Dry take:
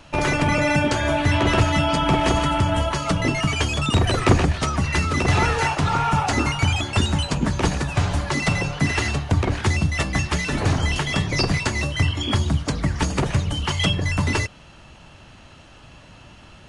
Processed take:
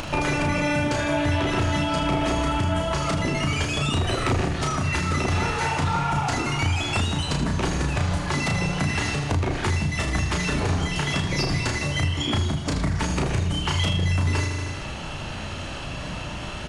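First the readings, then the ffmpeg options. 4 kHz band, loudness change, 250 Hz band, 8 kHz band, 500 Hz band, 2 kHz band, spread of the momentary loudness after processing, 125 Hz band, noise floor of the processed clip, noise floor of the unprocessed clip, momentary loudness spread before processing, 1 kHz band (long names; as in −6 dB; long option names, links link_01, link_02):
−2.0 dB, −3.0 dB, −2.5 dB, −2.0 dB, −3.0 dB, −3.0 dB, 8 LU, −2.5 dB, −33 dBFS, −47 dBFS, 4 LU, −3.0 dB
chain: -filter_complex "[0:a]acompressor=mode=upward:threshold=-34dB:ratio=2.5,aecho=1:1:78|156|234|312|390|468|546:0.355|0.209|0.124|0.0729|0.043|0.0254|0.015,aeval=exprs='0.794*sin(PI/2*2*val(0)/0.794)':channel_layout=same,acompressor=threshold=-21dB:ratio=5,asplit=2[link_01][link_02];[link_02]adelay=34,volume=-4dB[link_03];[link_01][link_03]amix=inputs=2:normalize=0,volume=-3dB"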